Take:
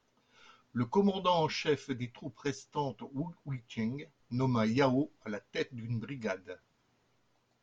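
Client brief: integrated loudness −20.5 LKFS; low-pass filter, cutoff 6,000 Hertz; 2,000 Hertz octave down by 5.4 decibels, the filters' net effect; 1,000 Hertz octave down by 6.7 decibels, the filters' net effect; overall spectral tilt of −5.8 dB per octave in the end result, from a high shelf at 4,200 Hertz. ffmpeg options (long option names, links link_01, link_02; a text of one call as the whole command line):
ffmpeg -i in.wav -af "lowpass=6000,equalizer=frequency=1000:width_type=o:gain=-7,equalizer=frequency=2000:width_type=o:gain=-6.5,highshelf=frequency=4200:gain=7.5,volume=15dB" out.wav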